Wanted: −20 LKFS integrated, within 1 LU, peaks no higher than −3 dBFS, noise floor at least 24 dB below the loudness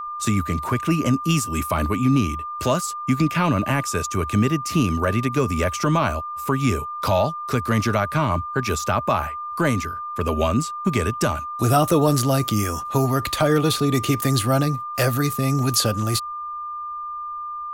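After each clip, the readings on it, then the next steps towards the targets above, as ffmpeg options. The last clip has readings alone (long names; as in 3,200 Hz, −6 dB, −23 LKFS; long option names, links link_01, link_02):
interfering tone 1,200 Hz; level of the tone −28 dBFS; integrated loudness −22.0 LKFS; sample peak −6.0 dBFS; target loudness −20.0 LKFS
→ -af "bandreject=frequency=1200:width=30"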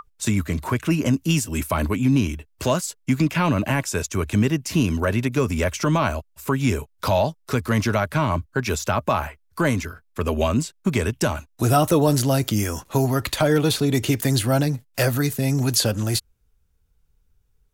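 interfering tone none found; integrated loudness −22.5 LKFS; sample peak −6.5 dBFS; target loudness −20.0 LKFS
→ -af "volume=2.5dB"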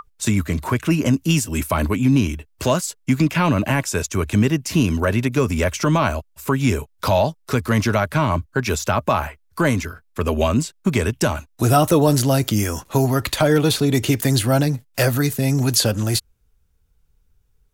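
integrated loudness −20.0 LKFS; sample peak −4.0 dBFS; background noise floor −60 dBFS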